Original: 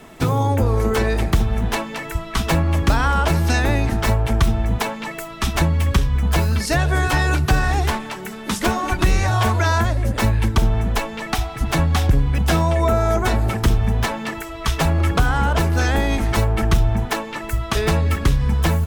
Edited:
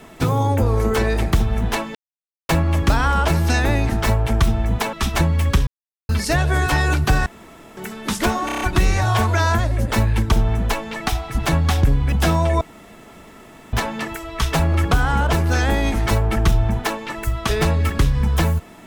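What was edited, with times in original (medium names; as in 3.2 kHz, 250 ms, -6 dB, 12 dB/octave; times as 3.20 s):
1.95–2.49 s: mute
4.93–5.34 s: delete
6.08–6.50 s: mute
7.67–8.18 s: room tone
8.87 s: stutter 0.03 s, 6 plays
12.87–13.99 s: room tone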